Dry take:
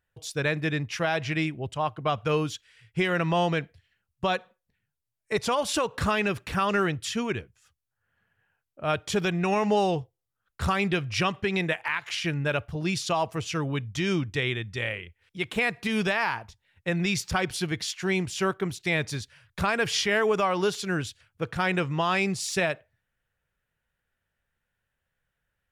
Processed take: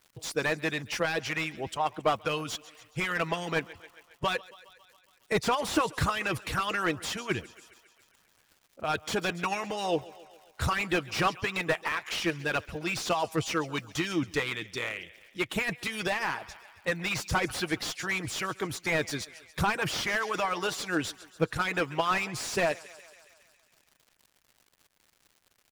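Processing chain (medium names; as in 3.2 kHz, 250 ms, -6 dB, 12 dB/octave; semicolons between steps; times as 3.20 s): treble shelf 6 kHz +6.5 dB; comb 6.3 ms, depth 31%; thinning echo 137 ms, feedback 67%, high-pass 290 Hz, level -19 dB; crackle 270 per s -47 dBFS; harmonic-percussive split harmonic -16 dB; slew-rate limiter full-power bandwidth 83 Hz; trim +2.5 dB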